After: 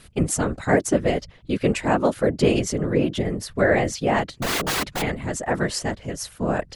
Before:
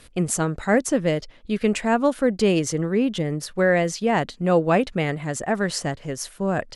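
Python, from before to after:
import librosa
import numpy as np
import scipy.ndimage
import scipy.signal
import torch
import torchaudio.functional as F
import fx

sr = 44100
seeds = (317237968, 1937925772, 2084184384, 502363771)

y = fx.overflow_wrap(x, sr, gain_db=19.0, at=(4.34, 5.02))
y = fx.whisperise(y, sr, seeds[0])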